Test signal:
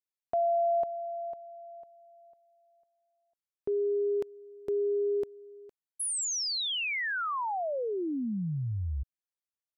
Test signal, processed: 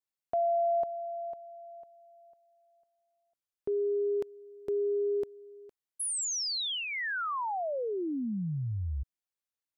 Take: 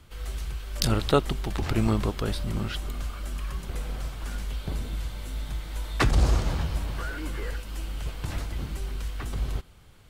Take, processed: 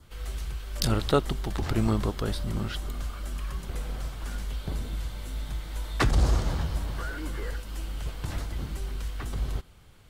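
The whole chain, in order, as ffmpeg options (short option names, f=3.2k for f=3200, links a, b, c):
-af "acontrast=29,adynamicequalizer=threshold=0.00355:dfrequency=2500:dqfactor=3.5:tfrequency=2500:tqfactor=3.5:attack=5:release=100:ratio=0.375:range=2.5:mode=cutabove:tftype=bell,volume=-6dB"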